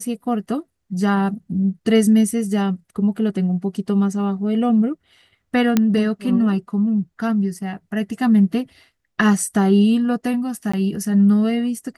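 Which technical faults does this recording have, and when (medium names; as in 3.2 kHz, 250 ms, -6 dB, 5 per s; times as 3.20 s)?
5.77 s: pop -3 dBFS
10.72–10.73 s: dropout 15 ms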